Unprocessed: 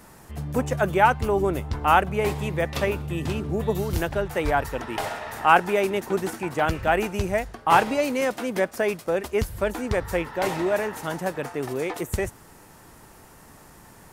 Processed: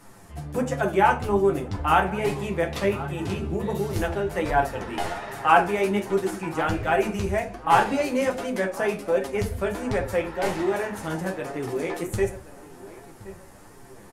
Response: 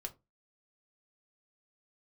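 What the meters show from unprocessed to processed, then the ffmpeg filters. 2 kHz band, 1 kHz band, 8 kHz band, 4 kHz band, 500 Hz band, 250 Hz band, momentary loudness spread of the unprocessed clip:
-1.5 dB, -0.5 dB, -1.5 dB, -1.5 dB, 0.0 dB, +1.0 dB, 10 LU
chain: -filter_complex "[0:a]asplit=2[a][b];[b]adelay=1072,lowpass=f=2.1k:p=1,volume=-16.5dB,asplit=2[c][d];[d]adelay=1072,lowpass=f=2.1k:p=1,volume=0.4,asplit=2[e][f];[f]adelay=1072,lowpass=f=2.1k:p=1,volume=0.4[g];[a][c][e][g]amix=inputs=4:normalize=0[h];[1:a]atrim=start_sample=2205,asetrate=23814,aresample=44100[i];[h][i]afir=irnorm=-1:irlink=0,flanger=delay=7.1:depth=5.6:regen=36:speed=1.3:shape=sinusoidal,volume=1.5dB"

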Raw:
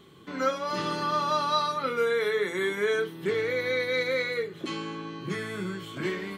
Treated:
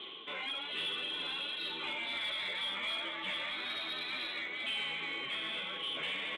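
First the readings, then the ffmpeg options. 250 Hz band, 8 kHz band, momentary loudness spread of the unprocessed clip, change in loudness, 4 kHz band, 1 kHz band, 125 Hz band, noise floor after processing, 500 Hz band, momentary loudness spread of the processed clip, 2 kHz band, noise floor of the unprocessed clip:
-16.5 dB, -13.5 dB, 9 LU, -7.0 dB, +3.0 dB, -15.0 dB, -21.5 dB, -42 dBFS, -22.0 dB, 2 LU, -5.5 dB, -46 dBFS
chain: -filter_complex "[0:a]highpass=340,asplit=2[a][b];[b]acompressor=threshold=-36dB:ratio=6,volume=-2dB[c];[a][c]amix=inputs=2:normalize=0,aemphasis=mode=reproduction:type=50fm,asplit=2[d][e];[e]adelay=867,lowpass=f=1.3k:p=1,volume=-4dB,asplit=2[f][g];[g]adelay=867,lowpass=f=1.3k:p=1,volume=0.44,asplit=2[h][i];[i]adelay=867,lowpass=f=1.3k:p=1,volume=0.44,asplit=2[j][k];[k]adelay=867,lowpass=f=1.3k:p=1,volume=0.44,asplit=2[l][m];[m]adelay=867,lowpass=f=1.3k:p=1,volume=0.44,asplit=2[n][o];[o]adelay=867,lowpass=f=1.3k:p=1,volume=0.44[p];[d][f][h][j][l][n][p]amix=inputs=7:normalize=0,afftfilt=real='re*lt(hypot(re,im),0.112)':imag='im*lt(hypot(re,im),0.112)':win_size=1024:overlap=0.75,aexciter=amount=14.6:drive=2.5:freq=2.5k,areverse,acompressor=mode=upward:threshold=-25dB:ratio=2.5,areverse,flanger=delay=7.4:depth=6.1:regen=28:speed=1.9:shape=triangular,aresample=8000,aresample=44100,asplit=2[q][r];[r]highpass=f=720:p=1,volume=13dB,asoftclip=type=tanh:threshold=-15dB[s];[q][s]amix=inputs=2:normalize=0,lowpass=f=1.3k:p=1,volume=-6dB,volume=-6.5dB"

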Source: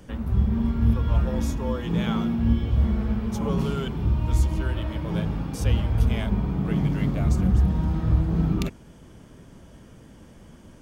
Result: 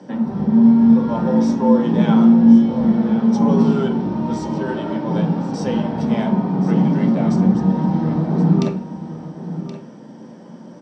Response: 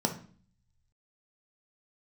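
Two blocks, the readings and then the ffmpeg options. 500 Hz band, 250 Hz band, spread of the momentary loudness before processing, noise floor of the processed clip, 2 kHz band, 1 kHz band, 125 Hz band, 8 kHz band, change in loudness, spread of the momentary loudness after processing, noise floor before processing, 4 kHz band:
+11.0 dB, +13.0 dB, 5 LU, -39 dBFS, +3.5 dB, +11.0 dB, +1.5 dB, n/a, +8.5 dB, 16 LU, -48 dBFS, +1.5 dB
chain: -filter_complex "[0:a]highpass=290,lowpass=5.1k,aecho=1:1:1074:0.237[a];[1:a]atrim=start_sample=2205[b];[a][b]afir=irnorm=-1:irlink=0"

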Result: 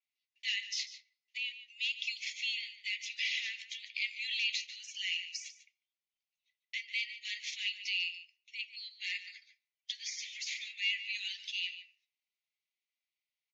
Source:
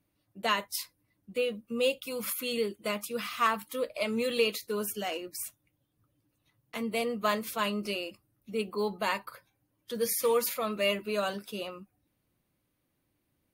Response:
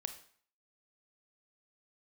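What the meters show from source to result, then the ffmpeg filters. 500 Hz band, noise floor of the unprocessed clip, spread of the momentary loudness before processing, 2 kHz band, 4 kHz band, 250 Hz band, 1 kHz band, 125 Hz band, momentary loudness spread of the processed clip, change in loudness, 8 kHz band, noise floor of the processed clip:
under -40 dB, -78 dBFS, 10 LU, 0.0 dB, +2.0 dB, under -40 dB, under -40 dB, under -40 dB, 10 LU, -5.0 dB, -6.0 dB, under -85 dBFS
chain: -filter_complex "[0:a]aeval=exprs='0.224*(cos(1*acos(clip(val(0)/0.224,-1,1)))-cos(1*PI/2))+0.00251*(cos(8*acos(clip(val(0)/0.224,-1,1)))-cos(8*PI/2))':c=same,asoftclip=type=hard:threshold=-20dB,alimiter=level_in=4dB:limit=-24dB:level=0:latency=1:release=52,volume=-4dB,acontrast=72,asplit=2[a][b];[b]adelay=145.8,volume=-12dB,highshelf=f=4k:g=-3.28[c];[a][c]amix=inputs=2:normalize=0,agate=range=-14dB:threshold=-58dB:ratio=16:detection=peak,asuperpass=centerf=3700:order=20:qfactor=0.77,asplit=2[d][e];[1:a]atrim=start_sample=2205,lowpass=4.3k[f];[e][f]afir=irnorm=-1:irlink=0,volume=-10dB[g];[d][g]amix=inputs=2:normalize=0,adynamicequalizer=threshold=0.00126:dfrequency=5000:dqfactor=5.7:tfrequency=5000:tqfactor=5.7:attack=5:release=100:ratio=0.375:range=2.5:mode=cutabove:tftype=bell"

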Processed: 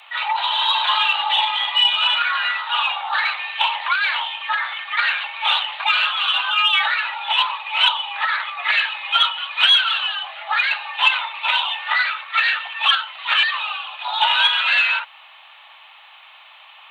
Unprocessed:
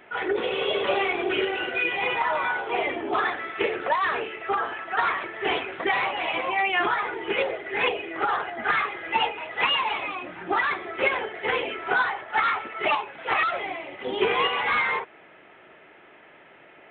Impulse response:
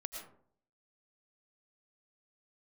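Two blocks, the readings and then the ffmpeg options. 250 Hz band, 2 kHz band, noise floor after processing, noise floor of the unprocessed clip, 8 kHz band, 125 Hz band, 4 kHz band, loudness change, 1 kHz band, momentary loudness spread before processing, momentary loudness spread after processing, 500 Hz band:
under -40 dB, +6.5 dB, -46 dBFS, -52 dBFS, n/a, under -40 dB, +15.5 dB, +7.5 dB, +3.5 dB, 5 LU, 8 LU, -16.0 dB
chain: -af "aexciter=amount=2.4:drive=6.4:freq=2.3k,afreqshift=480,volume=3.5dB"

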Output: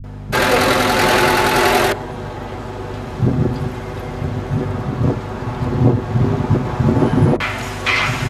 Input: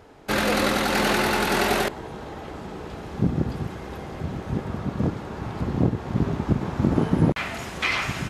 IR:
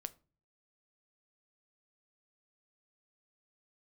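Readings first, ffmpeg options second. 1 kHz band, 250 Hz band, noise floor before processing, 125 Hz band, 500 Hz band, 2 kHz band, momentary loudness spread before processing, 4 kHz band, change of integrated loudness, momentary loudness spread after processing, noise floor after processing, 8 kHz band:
+9.0 dB, +6.0 dB, -38 dBFS, +9.0 dB, +8.5 dB, +8.0 dB, 15 LU, +7.5 dB, +7.5 dB, 14 LU, -29 dBFS, +7.0 dB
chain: -filter_complex "[0:a]aeval=exprs='val(0)+0.0158*(sin(2*PI*50*n/s)+sin(2*PI*2*50*n/s)/2+sin(2*PI*3*50*n/s)/3+sin(2*PI*4*50*n/s)/4+sin(2*PI*5*50*n/s)/5)':c=same,acrossover=split=210[a][b];[b]adelay=40[c];[a][c]amix=inputs=2:normalize=0,asplit=2[d][e];[1:a]atrim=start_sample=2205,lowpass=2k,adelay=8[f];[e][f]afir=irnorm=-1:irlink=0,volume=0.5dB[g];[d][g]amix=inputs=2:normalize=0,volume=7dB"

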